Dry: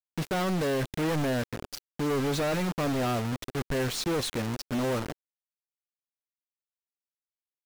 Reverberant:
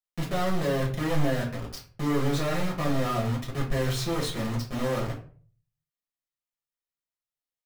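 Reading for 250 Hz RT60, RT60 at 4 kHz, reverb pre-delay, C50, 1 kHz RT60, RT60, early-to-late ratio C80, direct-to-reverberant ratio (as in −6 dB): 0.55 s, 0.30 s, 5 ms, 8.5 dB, 0.40 s, 0.45 s, 13.5 dB, −4.0 dB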